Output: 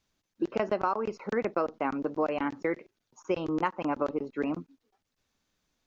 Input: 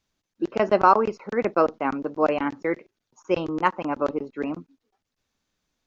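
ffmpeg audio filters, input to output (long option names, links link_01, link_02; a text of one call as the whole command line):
ffmpeg -i in.wav -af "acompressor=threshold=-25dB:ratio=6" out.wav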